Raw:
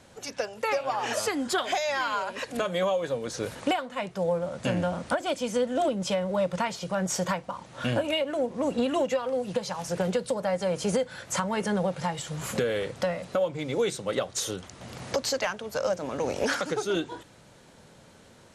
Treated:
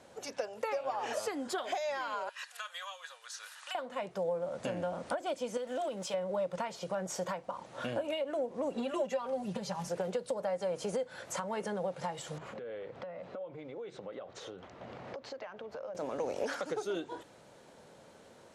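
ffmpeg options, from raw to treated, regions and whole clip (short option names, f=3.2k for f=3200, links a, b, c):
-filter_complex "[0:a]asettb=1/sr,asplit=3[a][b][c];[a]atrim=end=2.294[d];[b]atrim=start=2.29:end=3.75,asetpts=PTS-STARTPTS,afade=t=in:d=0.004:c=qsin,afade=t=out:st=1.456:d=0.004:c=qsin,highpass=f=1.3k:w=0.5412,highpass=f=1.3k:w=1.3066,bandreject=f=2.2k:w=8[e];[c]atrim=start=3.746[f];[d][e]acrossfade=d=0.004:c1=hsin:c2=qsin[g];[g][f]acrossfade=d=0.004:c1=qsin:c2=hsin,asettb=1/sr,asplit=3[h][i][j];[h]atrim=end=5.574[k];[i]atrim=start=5.57:end=6.14,asetpts=PTS-STARTPTS,afade=t=in:d=0.004:c=qsin,afade=t=out:st=0.566:d=0.004:c=qsin,tiltshelf=f=710:g=-5,acompressor=threshold=-27dB:ratio=6:attack=3.2:release=140:knee=1:detection=peak,aeval=exprs='sgn(val(0))*max(abs(val(0))-0.00168,0)':c=same[l];[j]atrim=start=6.136[m];[k][l]acrossfade=d=0.004:c1=hsin:c2=qsin[n];[n][m]acrossfade=d=0.004:c1=qsin:c2=hsin,asettb=1/sr,asplit=3[o][p][q];[o]atrim=end=8.764[r];[p]atrim=start=8.76:end=9.89,asetpts=PTS-STARTPTS,afade=t=in:d=0.004:c=qsin,afade=t=out:st=1.126:d=0.004:c=qsin,asubboost=boost=7.5:cutoff=240,aecho=1:1:5.1:0.99,atrim=end_sample=49833[s];[q]atrim=start=9.886[t];[r][s]acrossfade=d=0.004:c1=hsin:c2=qsin[u];[u][t]acrossfade=d=0.004:c1=qsin:c2=hsin,asettb=1/sr,asplit=3[v][w][x];[v]atrim=end=12.384[y];[w]atrim=start=12.38:end=15.95,asetpts=PTS-STARTPTS,afade=t=in:d=0.004:c=qsin,afade=t=out:st=3.566:d=0.004:c=qsin,lowpass=2.8k,acompressor=threshold=-38dB:ratio=16:attack=3.2:release=140:knee=1:detection=peak[z];[x]atrim=start=15.946[aa];[y][z]acrossfade=d=0.004:c1=hsin:c2=qsin[ab];[ab][aa]acrossfade=d=0.004:c1=qsin:c2=hsin,lowshelf=f=130:g=-7.5,acompressor=threshold=-34dB:ratio=2.5,equalizer=f=570:t=o:w=2:g=7,volume=-6dB"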